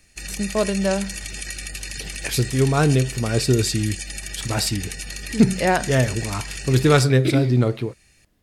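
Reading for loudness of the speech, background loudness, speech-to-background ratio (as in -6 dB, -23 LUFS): -21.0 LUFS, -31.0 LUFS, 10.0 dB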